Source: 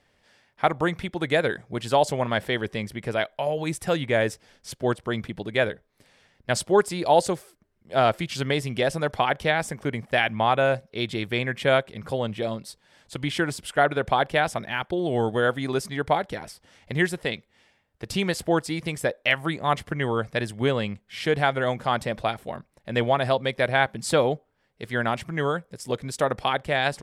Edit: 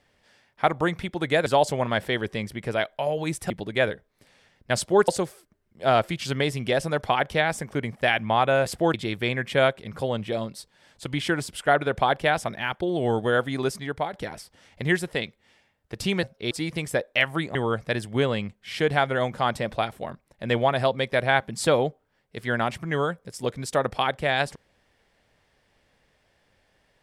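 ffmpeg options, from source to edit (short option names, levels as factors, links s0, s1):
-filter_complex "[0:a]asplit=10[s0][s1][s2][s3][s4][s5][s6][s7][s8][s9];[s0]atrim=end=1.462[s10];[s1]atrim=start=1.858:end=3.902[s11];[s2]atrim=start=5.288:end=6.872[s12];[s3]atrim=start=7.178:end=10.762[s13];[s4]atrim=start=18.328:end=18.612[s14];[s5]atrim=start=11.038:end=16.23,asetpts=PTS-STARTPTS,afade=t=out:st=4.732:d=0.46:silence=0.375837[s15];[s6]atrim=start=16.23:end=18.332,asetpts=PTS-STARTPTS,afade=t=in:d=0.004:c=hsin:silence=0.375837[s16];[s7]atrim=start=10.758:end=11.042[s17];[s8]atrim=start=18.608:end=19.652[s18];[s9]atrim=start=20.008[s19];[s10][s11]acrossfade=d=0.004:c1=hsin:c2=hsin[s20];[s20][s12]acrossfade=d=0.004:c1=hsin:c2=hsin[s21];[s21][s13]acrossfade=d=0.004:c1=hsin:c2=hsin[s22];[s22][s14]acrossfade=d=0.004:c1=hsin:c2=hsin[s23];[s15][s16]concat=n=2:v=0:a=1[s24];[s23][s24]acrossfade=d=0.004:c1=hsin:c2=hsin[s25];[s25][s17]acrossfade=d=0.004:c1=hsin:c2=hsin[s26];[s26][s18]acrossfade=d=0.004:c1=hsin:c2=hsin[s27];[s27][s19]acrossfade=d=0.004:c1=hsin:c2=hsin"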